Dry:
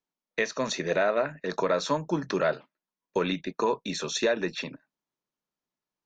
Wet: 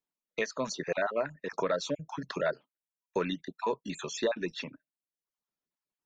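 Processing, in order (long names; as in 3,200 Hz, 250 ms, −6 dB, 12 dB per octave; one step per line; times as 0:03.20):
time-frequency cells dropped at random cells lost 24%
reverb reduction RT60 0.62 s
level −3.5 dB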